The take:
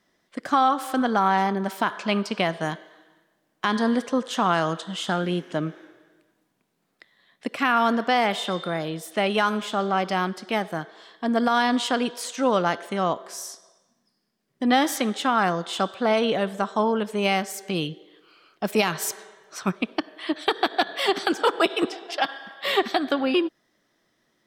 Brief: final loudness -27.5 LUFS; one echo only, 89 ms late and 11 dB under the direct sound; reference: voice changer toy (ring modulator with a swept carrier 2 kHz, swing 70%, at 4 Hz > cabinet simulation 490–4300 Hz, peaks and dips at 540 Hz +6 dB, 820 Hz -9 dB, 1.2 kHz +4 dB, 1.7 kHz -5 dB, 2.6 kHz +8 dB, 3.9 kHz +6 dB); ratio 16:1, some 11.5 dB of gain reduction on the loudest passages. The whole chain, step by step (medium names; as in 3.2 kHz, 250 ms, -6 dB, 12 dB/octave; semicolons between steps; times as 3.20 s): compression 16:1, threshold -27 dBFS; delay 89 ms -11 dB; ring modulator with a swept carrier 2 kHz, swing 70%, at 4 Hz; cabinet simulation 490–4300 Hz, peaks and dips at 540 Hz +6 dB, 820 Hz -9 dB, 1.2 kHz +4 dB, 1.7 kHz -5 dB, 2.6 kHz +8 dB, 3.9 kHz +6 dB; trim +3.5 dB